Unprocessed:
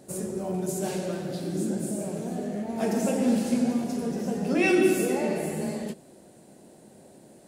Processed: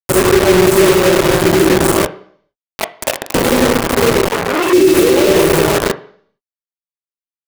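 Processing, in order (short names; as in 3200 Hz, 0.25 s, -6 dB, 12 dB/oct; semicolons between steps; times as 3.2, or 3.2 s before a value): tilt -2.5 dB/oct; 2.06–3.35 steep high-pass 610 Hz 72 dB/oct; dynamic EQ 1400 Hz, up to -6 dB, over -43 dBFS, Q 0.97; in parallel at +2 dB: compressor 10:1, threshold -35 dBFS, peak gain reduction 22 dB; on the sum: fixed phaser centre 1100 Hz, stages 8; bit-crush 5-bit; on a send at -9 dB: reverb RT60 0.55 s, pre-delay 3 ms; on the sum: maximiser +18.5 dB; 4.28–4.73 core saturation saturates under 1400 Hz; gain -1 dB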